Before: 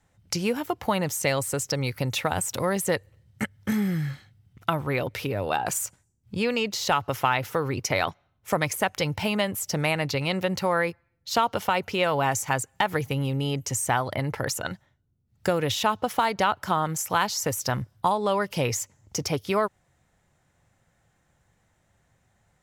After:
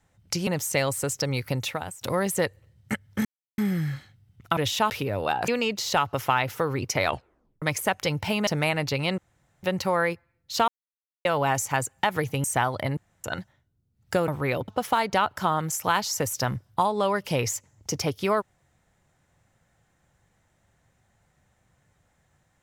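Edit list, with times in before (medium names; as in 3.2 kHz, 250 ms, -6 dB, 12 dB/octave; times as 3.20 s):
0.47–0.97 s: delete
2.03–2.51 s: fade out, to -20 dB
3.75 s: insert silence 0.33 s
4.74–5.14 s: swap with 15.61–15.94 s
5.72–6.43 s: delete
8.00 s: tape stop 0.57 s
9.42–9.69 s: delete
10.40 s: insert room tone 0.45 s
11.45–12.02 s: mute
13.21–13.77 s: delete
14.30–14.57 s: room tone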